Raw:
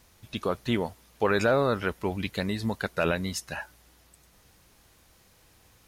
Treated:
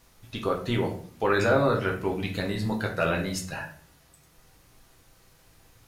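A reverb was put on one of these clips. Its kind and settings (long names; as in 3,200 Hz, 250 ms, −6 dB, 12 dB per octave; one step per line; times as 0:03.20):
rectangular room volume 52 cubic metres, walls mixed, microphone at 0.64 metres
level −2 dB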